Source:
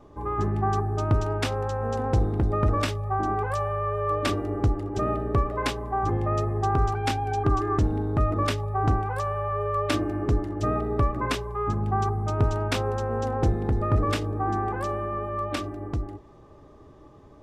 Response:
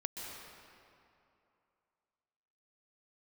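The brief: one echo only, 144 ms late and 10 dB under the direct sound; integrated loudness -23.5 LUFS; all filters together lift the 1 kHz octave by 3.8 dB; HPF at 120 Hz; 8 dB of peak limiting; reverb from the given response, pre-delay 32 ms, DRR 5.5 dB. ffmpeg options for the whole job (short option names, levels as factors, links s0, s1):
-filter_complex "[0:a]highpass=120,equalizer=f=1000:t=o:g=5,alimiter=limit=0.141:level=0:latency=1,aecho=1:1:144:0.316,asplit=2[s0][s1];[1:a]atrim=start_sample=2205,adelay=32[s2];[s1][s2]afir=irnorm=-1:irlink=0,volume=0.501[s3];[s0][s3]amix=inputs=2:normalize=0,volume=1.26"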